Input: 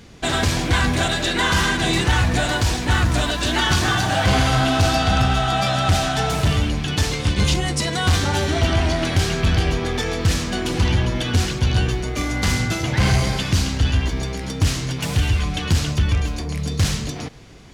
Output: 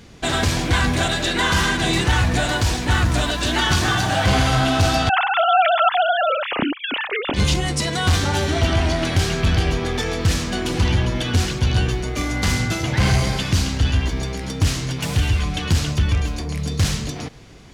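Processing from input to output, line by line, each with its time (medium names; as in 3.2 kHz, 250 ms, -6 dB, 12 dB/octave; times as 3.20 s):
5.09–7.34 s: formants replaced by sine waves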